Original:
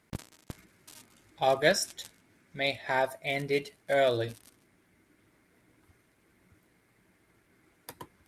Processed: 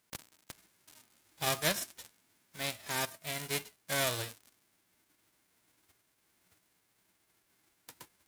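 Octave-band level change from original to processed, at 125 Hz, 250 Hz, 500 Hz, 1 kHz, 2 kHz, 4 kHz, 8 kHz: −3.5, −7.0, −12.0, −8.0, −5.5, −1.0, +3.0 decibels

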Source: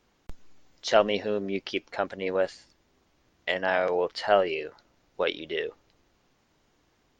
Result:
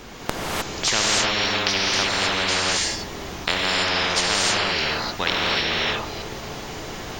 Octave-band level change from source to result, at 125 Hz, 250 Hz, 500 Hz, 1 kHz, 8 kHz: +13.0 dB, +5.5 dB, −2.5 dB, +6.0 dB, can't be measured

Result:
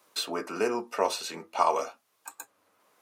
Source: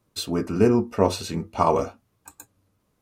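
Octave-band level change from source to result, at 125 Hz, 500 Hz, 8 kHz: −25.0, −7.5, −1.0 decibels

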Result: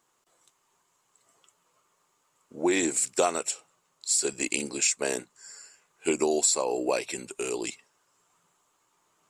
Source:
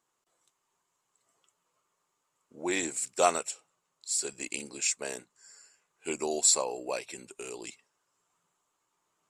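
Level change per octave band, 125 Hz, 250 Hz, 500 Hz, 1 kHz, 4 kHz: +6.0, +8.5, +5.5, +0.5, +2.5 decibels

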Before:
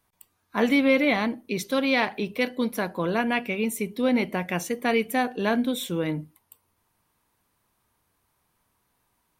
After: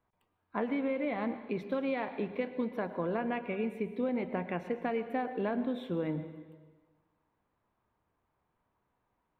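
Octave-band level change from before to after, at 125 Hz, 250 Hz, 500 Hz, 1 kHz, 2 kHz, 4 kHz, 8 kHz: −7.0 dB, −9.0 dB, −7.5 dB, −8.5 dB, −14.5 dB, −20.0 dB, below −35 dB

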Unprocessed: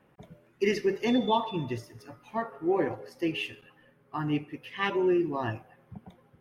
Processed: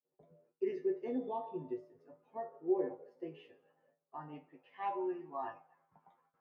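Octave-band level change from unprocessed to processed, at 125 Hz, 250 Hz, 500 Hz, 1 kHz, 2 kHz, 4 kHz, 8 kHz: −20.5 dB, −12.5 dB, −8.5 dB, −9.5 dB, −21.5 dB, below −25 dB, can't be measured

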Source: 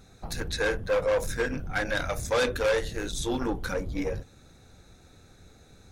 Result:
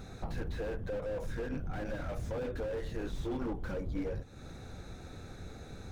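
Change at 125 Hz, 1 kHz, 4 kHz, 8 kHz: −3.0, −11.5, −17.0, −19.0 decibels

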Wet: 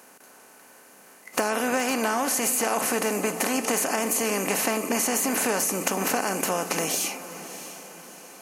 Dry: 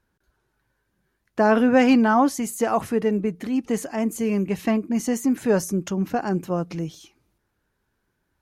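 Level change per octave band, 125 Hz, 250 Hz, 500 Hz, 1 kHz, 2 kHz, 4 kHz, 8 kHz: −10.0, −9.0, −4.0, −2.0, +2.0, +7.5, +11.5 decibels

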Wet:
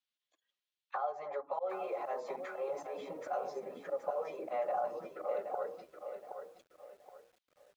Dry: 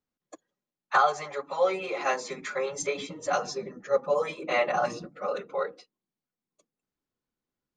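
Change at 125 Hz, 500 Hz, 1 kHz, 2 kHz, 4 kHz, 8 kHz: below −15 dB, −8.5 dB, −9.5 dB, −18.5 dB, below −20 dB, below −20 dB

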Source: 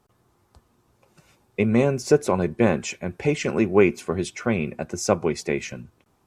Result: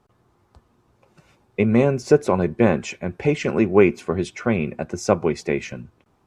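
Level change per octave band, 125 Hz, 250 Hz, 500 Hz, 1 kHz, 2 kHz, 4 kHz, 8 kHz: +2.5, +2.5, +2.5, +2.0, +1.0, −1.5, −4.0 decibels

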